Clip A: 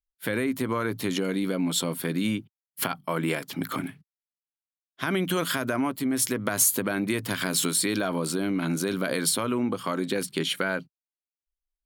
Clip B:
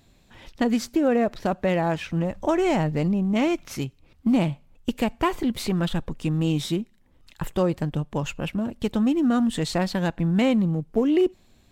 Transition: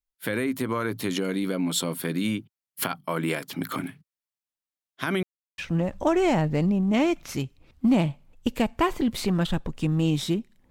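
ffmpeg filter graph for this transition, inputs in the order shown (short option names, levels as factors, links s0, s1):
-filter_complex "[0:a]apad=whole_dur=10.7,atrim=end=10.7,asplit=2[s0][s1];[s0]atrim=end=5.23,asetpts=PTS-STARTPTS,afade=t=out:st=5.226:d=0.004:c=hsin[s2];[s1]atrim=start=5.23:end=5.58,asetpts=PTS-STARTPTS,volume=0[s3];[1:a]atrim=start=2:end=7.12,asetpts=PTS-STARTPTS,afade=t=in:d=0.004:c=hsin[s4];[s2][s3][s4]concat=n=3:v=0:a=1"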